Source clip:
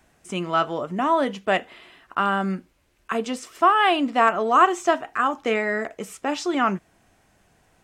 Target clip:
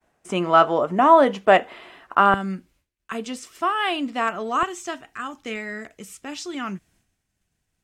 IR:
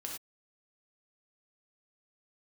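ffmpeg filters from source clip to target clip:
-af "agate=range=-33dB:threshold=-52dB:ratio=3:detection=peak,asetnsamples=nb_out_samples=441:pad=0,asendcmd='2.34 equalizer g -7;4.63 equalizer g -13.5',equalizer=frequency=720:width_type=o:width=2.7:gain=8"

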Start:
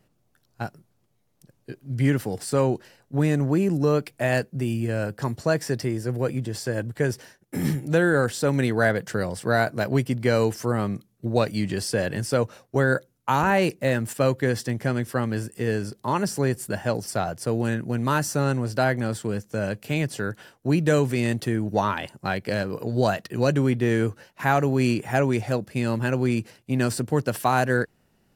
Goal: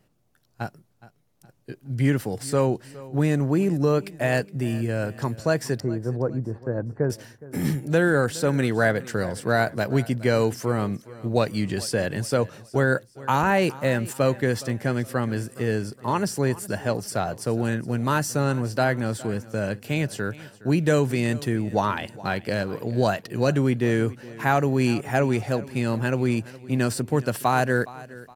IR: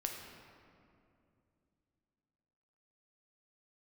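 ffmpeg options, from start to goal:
-filter_complex "[0:a]asettb=1/sr,asplit=3[link_01][link_02][link_03];[link_01]atrim=end=5.804[link_04];[link_02]atrim=start=5.8:end=7.1,asetpts=PTS-STARTPTS,afade=type=in:duration=0.004:curve=qsin,afade=type=out:start_time=1.296:duration=0.004:curve=qsin,lowpass=frequency=1300:width=0.5412,lowpass=frequency=1300:width=1.3066[link_05];[link_03]atrim=start=7.096[link_06];[link_04][link_05]acrossfade=duration=0.004:curve1=hsin:curve2=qsin[link_07];[link_07][link_06]acrossfade=duration=0.004:curve1=qsin:curve2=hsin,aecho=1:1:416|832|1248:0.112|0.0438|0.0171"

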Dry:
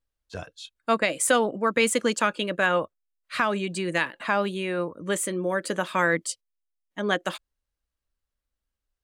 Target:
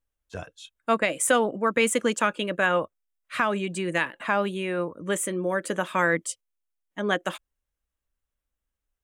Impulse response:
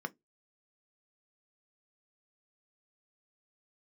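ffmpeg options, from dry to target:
-af "equalizer=frequency=4500:width=3.2:gain=-9.5"

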